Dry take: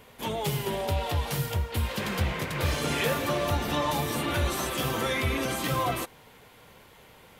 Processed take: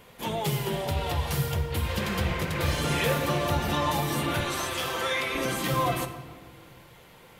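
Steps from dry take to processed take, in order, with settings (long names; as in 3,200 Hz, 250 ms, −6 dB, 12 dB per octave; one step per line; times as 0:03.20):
0:04.40–0:05.35: meter weighting curve A
rectangular room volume 1,900 cubic metres, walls mixed, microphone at 0.82 metres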